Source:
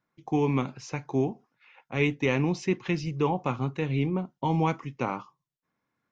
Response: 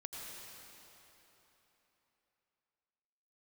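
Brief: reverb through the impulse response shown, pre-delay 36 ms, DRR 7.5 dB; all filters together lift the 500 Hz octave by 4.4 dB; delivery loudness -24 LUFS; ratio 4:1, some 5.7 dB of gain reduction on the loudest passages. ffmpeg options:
-filter_complex "[0:a]equalizer=f=500:t=o:g=5.5,acompressor=threshold=0.0631:ratio=4,asplit=2[s0][s1];[1:a]atrim=start_sample=2205,adelay=36[s2];[s1][s2]afir=irnorm=-1:irlink=0,volume=0.501[s3];[s0][s3]amix=inputs=2:normalize=0,volume=2"

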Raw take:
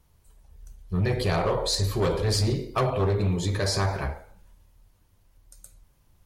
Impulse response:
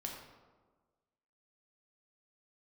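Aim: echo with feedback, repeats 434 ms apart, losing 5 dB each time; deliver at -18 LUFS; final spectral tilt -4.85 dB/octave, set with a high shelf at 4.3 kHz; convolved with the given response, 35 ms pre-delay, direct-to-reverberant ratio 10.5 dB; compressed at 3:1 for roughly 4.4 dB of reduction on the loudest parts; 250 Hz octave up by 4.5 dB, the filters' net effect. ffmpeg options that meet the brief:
-filter_complex "[0:a]equalizer=f=250:t=o:g=7,highshelf=f=4300:g=5.5,acompressor=threshold=0.0631:ratio=3,aecho=1:1:434|868|1302|1736|2170|2604|3038:0.562|0.315|0.176|0.0988|0.0553|0.031|0.0173,asplit=2[s0][s1];[1:a]atrim=start_sample=2205,adelay=35[s2];[s1][s2]afir=irnorm=-1:irlink=0,volume=0.335[s3];[s0][s3]amix=inputs=2:normalize=0,volume=2.66"

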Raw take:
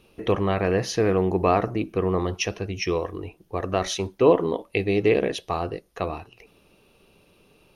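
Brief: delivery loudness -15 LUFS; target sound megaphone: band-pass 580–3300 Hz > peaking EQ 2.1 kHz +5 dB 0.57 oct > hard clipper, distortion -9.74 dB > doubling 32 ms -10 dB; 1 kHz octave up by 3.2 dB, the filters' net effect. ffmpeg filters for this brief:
-filter_complex "[0:a]highpass=580,lowpass=3300,equalizer=f=1000:t=o:g=5,equalizer=f=2100:t=o:w=0.57:g=5,asoftclip=type=hard:threshold=0.126,asplit=2[s0][s1];[s1]adelay=32,volume=0.316[s2];[s0][s2]amix=inputs=2:normalize=0,volume=4.73"

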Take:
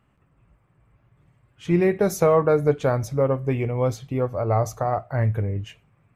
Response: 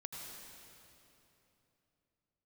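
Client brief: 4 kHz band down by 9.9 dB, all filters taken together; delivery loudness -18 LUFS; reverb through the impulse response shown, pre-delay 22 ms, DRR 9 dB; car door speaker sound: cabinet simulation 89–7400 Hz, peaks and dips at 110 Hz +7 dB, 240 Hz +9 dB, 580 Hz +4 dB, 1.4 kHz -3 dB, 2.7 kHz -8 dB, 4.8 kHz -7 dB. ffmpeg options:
-filter_complex "[0:a]equalizer=f=4000:t=o:g=-8,asplit=2[s0][s1];[1:a]atrim=start_sample=2205,adelay=22[s2];[s1][s2]afir=irnorm=-1:irlink=0,volume=0.447[s3];[s0][s3]amix=inputs=2:normalize=0,highpass=89,equalizer=f=110:t=q:w=4:g=7,equalizer=f=240:t=q:w=4:g=9,equalizer=f=580:t=q:w=4:g=4,equalizer=f=1400:t=q:w=4:g=-3,equalizer=f=2700:t=q:w=4:g=-8,equalizer=f=4800:t=q:w=4:g=-7,lowpass=f=7400:w=0.5412,lowpass=f=7400:w=1.3066,volume=1.26"

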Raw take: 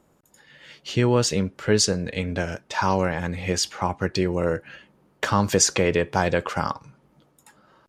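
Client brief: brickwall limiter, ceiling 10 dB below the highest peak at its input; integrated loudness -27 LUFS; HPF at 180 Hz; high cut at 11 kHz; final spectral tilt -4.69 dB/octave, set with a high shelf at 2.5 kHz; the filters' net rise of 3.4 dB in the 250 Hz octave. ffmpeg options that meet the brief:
-af "highpass=180,lowpass=11000,equalizer=f=250:t=o:g=7,highshelf=f=2500:g=-8,volume=1.12,alimiter=limit=0.188:level=0:latency=1"

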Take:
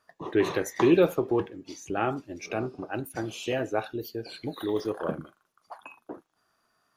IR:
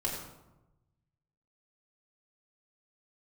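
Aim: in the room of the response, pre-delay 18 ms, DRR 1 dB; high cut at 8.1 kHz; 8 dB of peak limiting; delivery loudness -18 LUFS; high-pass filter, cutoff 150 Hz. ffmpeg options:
-filter_complex "[0:a]highpass=150,lowpass=8100,alimiter=limit=0.126:level=0:latency=1,asplit=2[s0][s1];[1:a]atrim=start_sample=2205,adelay=18[s2];[s1][s2]afir=irnorm=-1:irlink=0,volume=0.501[s3];[s0][s3]amix=inputs=2:normalize=0,volume=3.35"

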